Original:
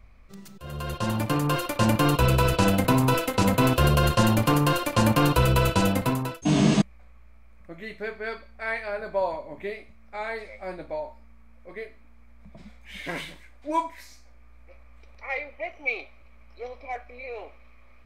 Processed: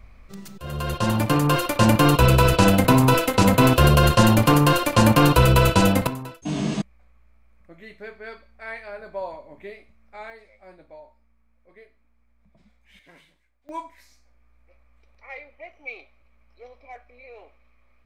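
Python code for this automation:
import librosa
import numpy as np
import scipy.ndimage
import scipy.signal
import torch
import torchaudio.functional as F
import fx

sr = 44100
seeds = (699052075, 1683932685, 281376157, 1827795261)

y = fx.gain(x, sr, db=fx.steps((0.0, 5.0), (6.07, -5.5), (10.3, -12.5), (12.99, -20.0), (13.69, -8.0)))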